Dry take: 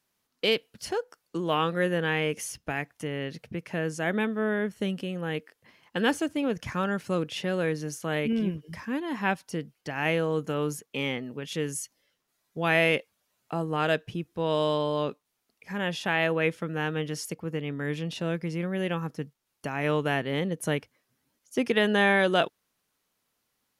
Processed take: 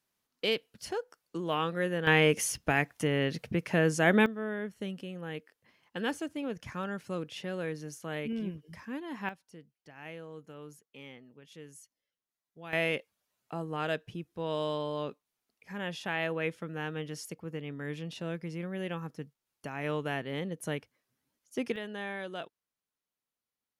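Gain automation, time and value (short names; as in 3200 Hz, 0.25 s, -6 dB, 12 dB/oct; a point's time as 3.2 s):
-5 dB
from 2.07 s +4 dB
from 4.26 s -8 dB
from 9.29 s -18.5 dB
from 12.73 s -7 dB
from 21.76 s -16.5 dB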